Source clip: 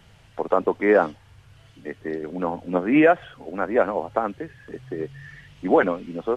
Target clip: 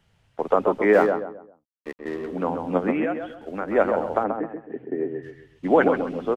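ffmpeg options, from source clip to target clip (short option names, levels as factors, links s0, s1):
-filter_complex "[0:a]agate=range=0.251:threshold=0.01:ratio=16:detection=peak,asettb=1/sr,asplit=3[s0][s1][s2];[s0]atrim=end=0.934[s3];[s1]atrim=start=0.93:end=2.28,asetpts=PTS-STARTPTS,afade=t=in:d=0.004:c=qsin,afade=t=out:st=1.346:d=0.004:c=qsin,aeval=exprs='sgn(val(0))*max(abs(val(0))-0.0112,0)':c=same[s4];[s2]atrim=start=2.276[s5];[s3][s4]acrossfade=d=0.004:c1=hsin:c2=qsin[s6];[s6][s5]acrossfade=d=0.004:c1=qsin:c2=hsin,asettb=1/sr,asplit=3[s7][s8][s9];[s7]atrim=end=2.914[s10];[s8]atrim=start=2.91:end=3.68,asetpts=PTS-STARTPTS,afade=t=in:d=0.004:c=qsin,afade=t=out:st=0.766:d=0.004:c=qsin,acompressor=threshold=0.0501:ratio=4[s11];[s9]atrim=start=3.676[s12];[s10][s11]acrossfade=d=0.004:c1=hsin:c2=qsin[s13];[s13][s12]acrossfade=d=0.004:c1=qsin:c2=hsin,asplit=3[s14][s15][s16];[s14]afade=t=out:st=4.23:d=0.02[s17];[s15]highpass=190,equalizer=f=260:t=q:w=4:g=8,equalizer=f=390:t=q:w=4:g=3,equalizer=f=740:t=q:w=4:g=4,equalizer=f=1200:t=q:w=4:g=-10,lowpass=f=2100:w=0.5412,lowpass=f=2100:w=1.3066,afade=t=in:st=4.23:d=0.02,afade=t=out:st=5.22:d=0.02[s18];[s16]afade=t=in:st=5.22:d=0.02[s19];[s17][s18][s19]amix=inputs=3:normalize=0,asplit=2[s20][s21];[s21]adelay=132,lowpass=f=1400:p=1,volume=0.562,asplit=2[s22][s23];[s23]adelay=132,lowpass=f=1400:p=1,volume=0.35,asplit=2[s24][s25];[s25]adelay=132,lowpass=f=1400:p=1,volume=0.35,asplit=2[s26][s27];[s27]adelay=132,lowpass=f=1400:p=1,volume=0.35[s28];[s20][s22][s24][s26][s28]amix=inputs=5:normalize=0"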